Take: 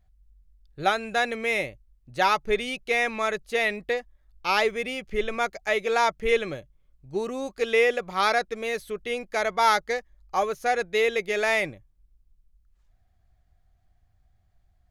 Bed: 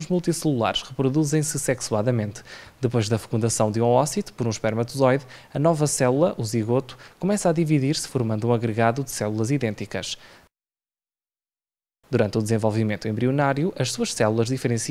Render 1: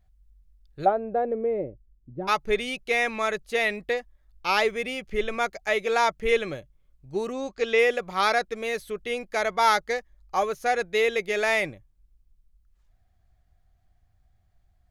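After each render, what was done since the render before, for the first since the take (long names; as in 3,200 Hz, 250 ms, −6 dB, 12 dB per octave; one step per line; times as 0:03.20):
0:00.84–0:02.27: low-pass with resonance 690 Hz → 280 Hz, resonance Q 1.8
0:07.32–0:07.79: low-pass filter 7,200 Hz 24 dB per octave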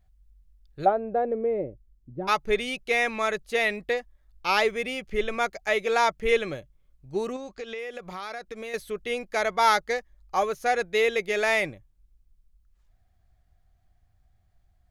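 0:07.36–0:08.74: downward compressor, threshold −33 dBFS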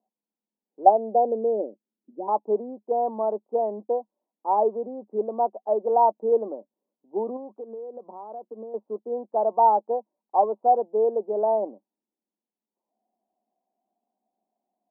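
dynamic equaliser 760 Hz, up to +7 dB, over −37 dBFS, Q 1.4
Chebyshev band-pass filter 210–1,000 Hz, order 5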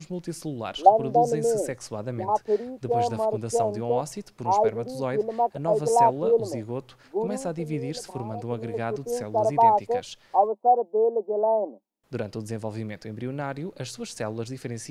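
mix in bed −10.5 dB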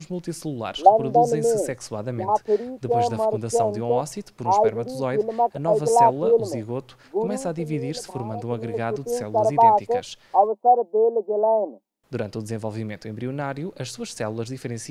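level +3 dB
brickwall limiter −2 dBFS, peak gain reduction 1.5 dB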